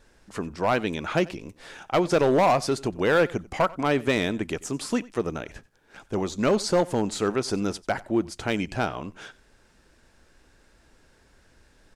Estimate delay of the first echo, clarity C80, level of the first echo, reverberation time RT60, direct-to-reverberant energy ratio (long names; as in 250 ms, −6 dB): 92 ms, no reverb audible, −21.5 dB, no reverb audible, no reverb audible